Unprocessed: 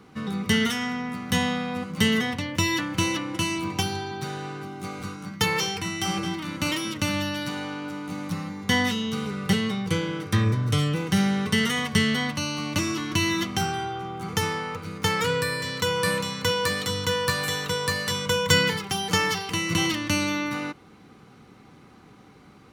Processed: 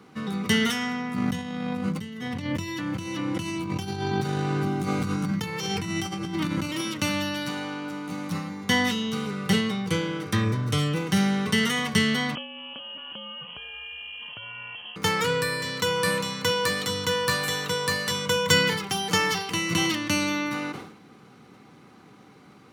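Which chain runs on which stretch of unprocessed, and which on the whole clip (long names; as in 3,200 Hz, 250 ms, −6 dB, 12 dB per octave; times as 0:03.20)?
0:01.14–0:06.81: low-shelf EQ 240 Hz +12 dB + compressor whose output falls as the input rises −30 dBFS
0:12.35–0:14.96: phaser with its sweep stopped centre 470 Hz, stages 4 + downward compressor 12 to 1, threshold −34 dBFS + voice inversion scrambler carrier 3,200 Hz
whole clip: high-pass filter 120 Hz; level that may fall only so fast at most 72 dB per second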